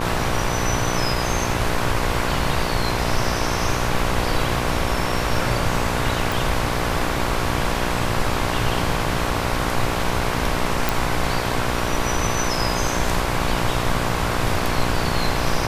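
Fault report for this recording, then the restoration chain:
mains buzz 60 Hz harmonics 19 −26 dBFS
0:06.32: click
0:10.89: click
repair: click removal
hum removal 60 Hz, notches 19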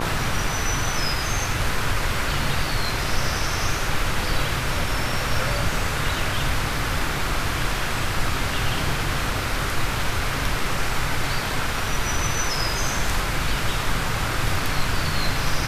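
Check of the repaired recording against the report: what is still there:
none of them is left

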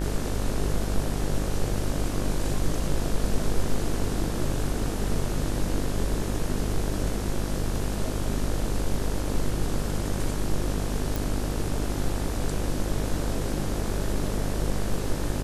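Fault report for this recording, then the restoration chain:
mains buzz 50 Hz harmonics 36 −30 dBFS
0:11.16: click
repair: click removal
hum removal 50 Hz, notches 36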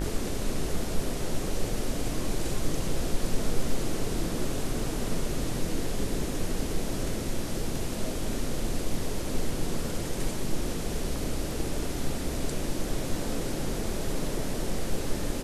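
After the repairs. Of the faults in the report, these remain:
none of them is left

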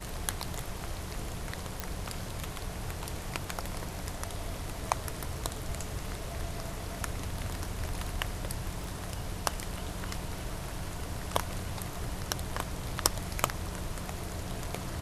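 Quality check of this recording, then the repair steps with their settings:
0:01.80: click
0:08.84: click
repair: click removal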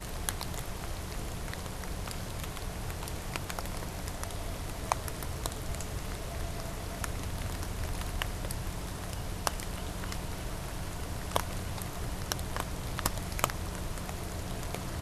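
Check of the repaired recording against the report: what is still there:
0:08.84: click

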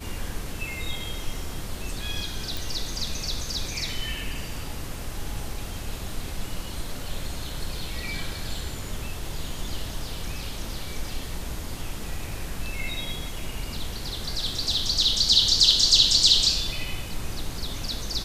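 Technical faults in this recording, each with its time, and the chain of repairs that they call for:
0:02.57: click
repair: click removal

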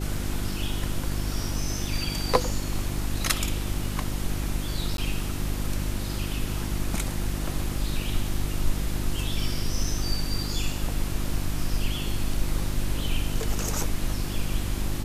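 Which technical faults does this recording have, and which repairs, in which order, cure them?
mains hum 50 Hz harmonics 7 −31 dBFS
0:04.97–0:04.98: drop-out 12 ms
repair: hum removal 50 Hz, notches 7
repair the gap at 0:04.97, 12 ms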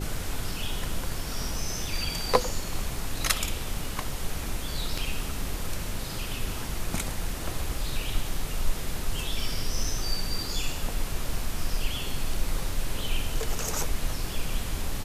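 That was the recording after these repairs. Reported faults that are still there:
none of them is left

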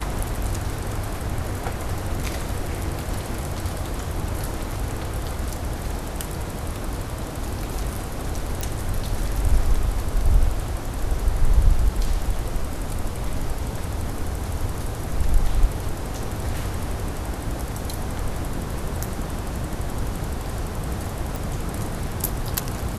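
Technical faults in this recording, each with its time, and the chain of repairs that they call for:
0:08.61: click
0:21.36: click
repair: click removal

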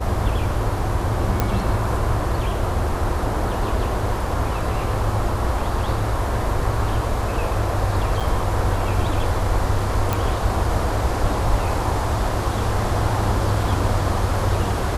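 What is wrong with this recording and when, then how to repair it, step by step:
0:01.40: click −6 dBFS
0:08.20–0:08.21: drop-out 6.6 ms
0:10.13: click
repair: click removal
repair the gap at 0:08.20, 6.6 ms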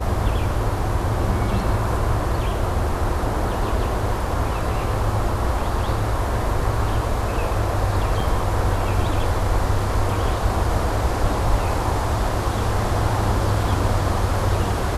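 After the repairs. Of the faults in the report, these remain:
none of them is left

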